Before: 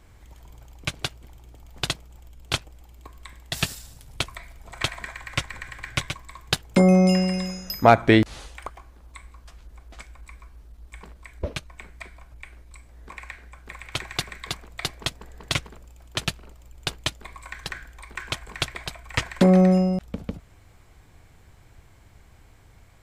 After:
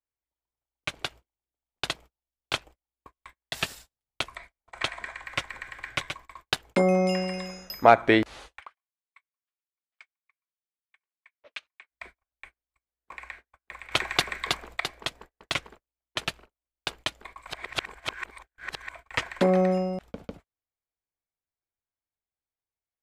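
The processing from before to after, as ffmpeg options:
-filter_complex "[0:a]asettb=1/sr,asplit=3[a][b][c];[a]atrim=end=4.304[d];[b]atrim=start=4.3:end=5.25,asetpts=PTS-STARTPTS,afade=t=in:d=0.004:c=qsin,afade=t=out:st=0.946:d=0.004:c=qsin,lowpass=f=11k:w=0.5412,lowpass=f=11k:w=1.3066[e];[c]atrim=start=5.246[f];[d][e]acrossfade=d=0.004:c1=hsin:c2=qsin[g];[g][f]acrossfade=d=0.004:c1=qsin:c2=hsin,asplit=3[h][i][j];[h]afade=t=out:st=8.59:d=0.02[k];[i]bandpass=f=2.7k:t=q:w=1.1,afade=t=in:st=8.59:d=0.02,afade=t=out:st=11.9:d=0.02[l];[j]afade=t=in:st=11.9:d=0.02[m];[k][l][m]amix=inputs=3:normalize=0,asplit=5[n][o][p][q][r];[n]atrim=end=13.912[s];[o]atrim=start=13.908:end=14.802,asetpts=PTS-STARTPTS,volume=7.5dB[t];[p]atrim=start=14.798:end=17.472[u];[q]atrim=start=17.468:end=18.942,asetpts=PTS-STARTPTS,areverse[v];[r]atrim=start=18.938[w];[s][t]acrossfade=d=0.004:c1=hsin:c2=hsin[x];[x][u]acrossfade=d=0.004:c1=hsin:c2=hsin[y];[y][v]acrossfade=d=0.004:c1=hsin:c2=hsin[z];[z][w]acrossfade=d=0.004:c1=hsin:c2=hsin,bass=f=250:g=-12,treble=f=4k:g=-7,agate=range=-40dB:threshold=-45dB:ratio=16:detection=peak,volume=-1dB"

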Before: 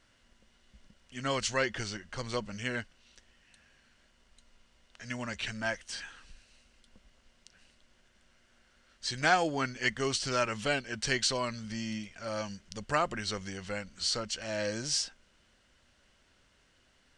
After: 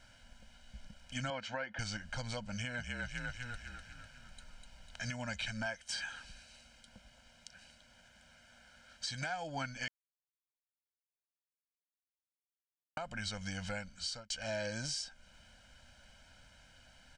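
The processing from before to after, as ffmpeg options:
-filter_complex "[0:a]asettb=1/sr,asplit=3[a][b][c];[a]atrim=end=1.304[d];[b]atrim=start=1.3:end=1.79,asetpts=PTS-STARTPTS,afade=t=in:d=0.004:c=qsin,afade=t=out:st=0.486:d=0.004:c=qsin,highpass=220,lowpass=2.1k[e];[c]atrim=start=1.786[f];[d][e]acrossfade=d=0.004:c1=hsin:c2=qsin[g];[g][f]acrossfade=d=0.004:c1=qsin:c2=hsin,asettb=1/sr,asplit=3[h][i][j];[h]atrim=end=2.534[k];[i]atrim=start=2.53:end=5.13,asetpts=PTS-STARTPTS,afade=t=in:d=0.004:c=qsin,afade=t=out:st=2.596:d=0.004:c=qsin,asplit=8[l][m][n][o][p][q][r][s];[m]adelay=249,afreqshift=-43,volume=-5dB[t];[n]adelay=498,afreqshift=-86,volume=-10.4dB[u];[o]adelay=747,afreqshift=-129,volume=-15.7dB[v];[p]adelay=996,afreqshift=-172,volume=-21.1dB[w];[q]adelay=1245,afreqshift=-215,volume=-26.4dB[x];[r]adelay=1494,afreqshift=-258,volume=-31.8dB[y];[s]adelay=1743,afreqshift=-301,volume=-37.1dB[z];[l][t][u][v][w][x][y][z]amix=inputs=8:normalize=0,atrim=end_sample=114660[aa];[j]atrim=start=5.126[ab];[k][aa]acrossfade=d=0.004:c1=hsin:c2=qsin[ac];[ac][ab]acrossfade=d=0.004:c1=qsin:c2=hsin,asettb=1/sr,asplit=3[ad][ae][af];[ad]atrim=end=5.664[ag];[ae]atrim=start=5.66:end=9.3,asetpts=PTS-STARTPTS,afade=t=in:d=0.004:c=qsin,afade=t=out:st=3.636:d=0.004:c=qsin,highpass=f=99:p=1[ah];[af]atrim=start=9.296[ai];[ag][ah]acrossfade=d=0.004:c1=hsin:c2=qsin[aj];[aj][ai]acrossfade=d=0.004:c1=qsin:c2=hsin,asplit=4[ak][al][am][an];[ak]atrim=end=9.88,asetpts=PTS-STARTPTS,afade=t=out:st=9.876:d=0.004:c=hsin[ao];[al]atrim=start=9.88:end=12.97,asetpts=PTS-STARTPTS,volume=0[ap];[am]atrim=start=12.97:end=14.3,asetpts=PTS-STARTPTS,afade=t=in:d=0.004:c=hsin,afade=t=out:st=0.5:d=0.83[aq];[an]atrim=start=14.3,asetpts=PTS-STARTPTS,afade=t=in:d=0.004:c=hsin[ar];[ao][ap][aq][ar]concat=n=4:v=0:a=1,aecho=1:1:1.3:0.99,acompressor=threshold=-37dB:ratio=3,alimiter=level_in=6dB:limit=-24dB:level=0:latency=1:release=440,volume=-6dB,volume=2.5dB"

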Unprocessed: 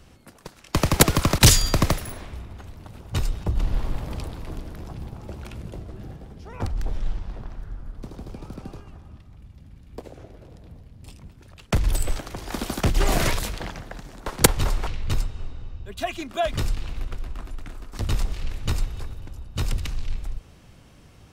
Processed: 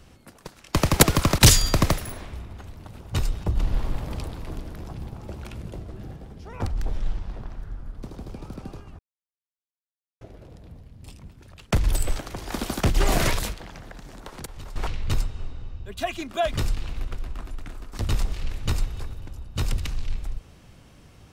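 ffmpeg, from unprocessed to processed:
-filter_complex "[0:a]asettb=1/sr,asplit=3[a][b][c];[a]atrim=end=13.534[d];[b]atrim=start=13.53:end=14.76,asetpts=PTS-STARTPTS,afade=t=in:d=0.004:c=qsin,afade=t=out:st=1.226:d=0.004:c=qsin,acompressor=threshold=-36dB:ratio=5:attack=3.2:release=140:knee=1:detection=peak[e];[c]atrim=start=14.756[f];[d][e]acrossfade=d=0.004:c1=hsin:c2=qsin[g];[g][f]acrossfade=d=0.004:c1=qsin:c2=hsin,asplit=3[h][i][j];[h]atrim=end=8.99,asetpts=PTS-STARTPTS,afade=t=out:st=8.986:d=0.004:c=hsin[k];[i]atrim=start=8.99:end=10.21,asetpts=PTS-STARTPTS,volume=0[l];[j]atrim=start=10.21,asetpts=PTS-STARTPTS,afade=t=in:d=0.004:c=hsin[m];[k][l][m]concat=n=3:v=0:a=1"

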